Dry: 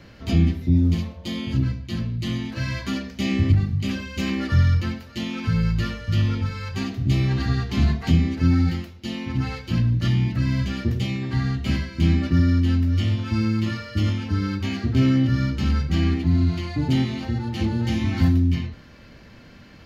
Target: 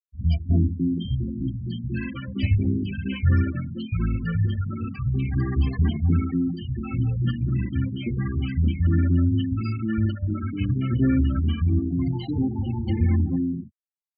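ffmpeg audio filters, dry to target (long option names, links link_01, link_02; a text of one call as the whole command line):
ffmpeg -i in.wav -filter_complex "[0:a]afftfilt=real='re*gte(hypot(re,im),0.0708)':imag='im*gte(hypot(re,im),0.0708)':win_size=1024:overlap=0.75,atempo=1.4,acrossover=split=150|740[link_01][link_02][link_03];[link_03]adelay=110[link_04];[link_02]adelay=310[link_05];[link_01][link_05][link_04]amix=inputs=3:normalize=0" out.wav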